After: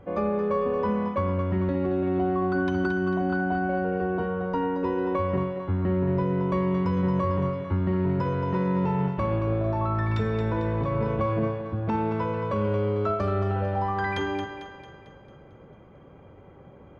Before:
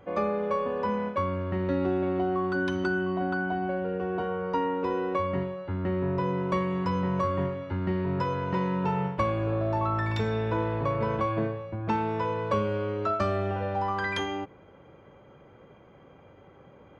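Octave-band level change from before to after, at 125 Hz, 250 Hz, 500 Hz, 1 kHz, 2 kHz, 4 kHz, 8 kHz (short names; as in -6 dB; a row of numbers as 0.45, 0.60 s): +4.5 dB, +3.5 dB, +2.0 dB, 0.0 dB, 0.0 dB, -3.0 dB, n/a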